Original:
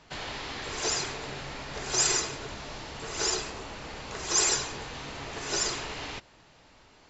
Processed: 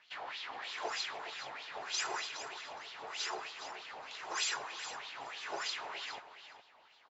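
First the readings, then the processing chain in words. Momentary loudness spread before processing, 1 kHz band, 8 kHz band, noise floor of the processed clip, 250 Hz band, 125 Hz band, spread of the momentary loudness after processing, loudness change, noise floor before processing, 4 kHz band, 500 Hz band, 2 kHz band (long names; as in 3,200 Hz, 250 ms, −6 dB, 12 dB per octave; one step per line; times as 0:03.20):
16 LU, −4.5 dB, can't be measured, −64 dBFS, −17.5 dB, −27.5 dB, 11 LU, −9.5 dB, −58 dBFS, −7.5 dB, −10.5 dB, −5.0 dB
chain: LFO wah 3.2 Hz 730–3,700 Hz, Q 2.9
repeating echo 415 ms, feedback 16%, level −11 dB
level +1.5 dB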